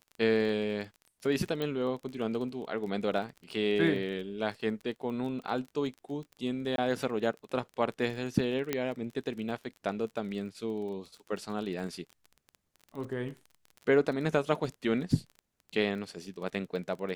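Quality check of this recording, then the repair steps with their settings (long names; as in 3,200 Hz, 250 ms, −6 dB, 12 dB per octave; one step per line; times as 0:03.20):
surface crackle 26 per second −39 dBFS
0:01.62: click −21 dBFS
0:06.76–0:06.78: drop-out 22 ms
0:08.73: click −14 dBFS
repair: click removal
repair the gap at 0:06.76, 22 ms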